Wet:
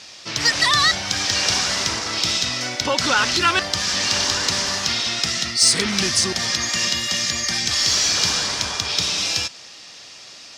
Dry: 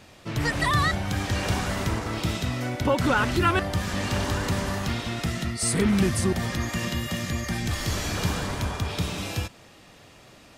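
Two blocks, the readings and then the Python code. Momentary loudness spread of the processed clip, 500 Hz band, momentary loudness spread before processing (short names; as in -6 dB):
7 LU, -0.5 dB, 7 LU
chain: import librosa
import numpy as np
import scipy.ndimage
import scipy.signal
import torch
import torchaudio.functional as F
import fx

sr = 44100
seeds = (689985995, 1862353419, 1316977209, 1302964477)

p1 = fx.lowpass_res(x, sr, hz=5400.0, q=2.8)
p2 = fx.tilt_eq(p1, sr, slope=3.5)
p3 = 10.0 ** (-14.5 / 20.0) * np.tanh(p2 / 10.0 ** (-14.5 / 20.0))
y = p2 + (p3 * librosa.db_to_amplitude(-6.5))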